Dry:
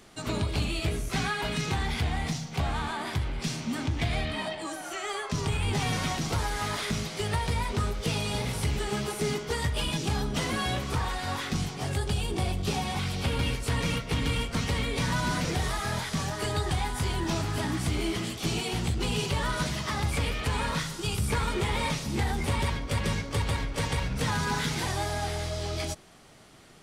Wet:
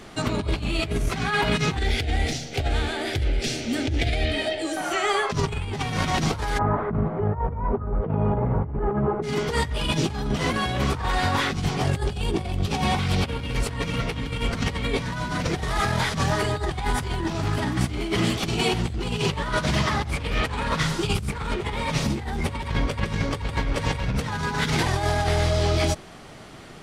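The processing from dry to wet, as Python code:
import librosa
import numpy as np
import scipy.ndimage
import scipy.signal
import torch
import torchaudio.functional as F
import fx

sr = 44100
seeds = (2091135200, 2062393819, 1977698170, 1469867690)

y = fx.fixed_phaser(x, sr, hz=430.0, stages=4, at=(1.77, 4.77))
y = fx.lowpass(y, sr, hz=1200.0, slope=24, at=(6.57, 9.22), fade=0.02)
y = fx.doppler_dist(y, sr, depth_ms=0.21, at=(19.2, 21.65))
y = fx.high_shelf(y, sr, hz=5200.0, db=-9.5)
y = fx.over_compress(y, sr, threshold_db=-32.0, ratio=-0.5)
y = y * librosa.db_to_amplitude(8.5)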